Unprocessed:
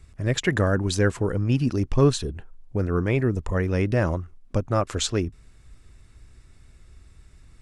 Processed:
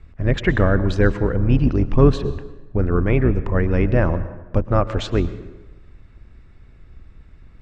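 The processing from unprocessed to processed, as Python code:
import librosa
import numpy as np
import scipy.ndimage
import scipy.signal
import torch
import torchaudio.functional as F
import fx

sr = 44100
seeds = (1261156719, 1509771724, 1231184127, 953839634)

y = fx.octave_divider(x, sr, octaves=2, level_db=-1.0)
y = scipy.signal.sosfilt(scipy.signal.butter(2, 2600.0, 'lowpass', fs=sr, output='sos'), y)
y = fx.rev_plate(y, sr, seeds[0], rt60_s=1.1, hf_ratio=0.7, predelay_ms=100, drr_db=14.0)
y = y * 10.0 ** (4.0 / 20.0)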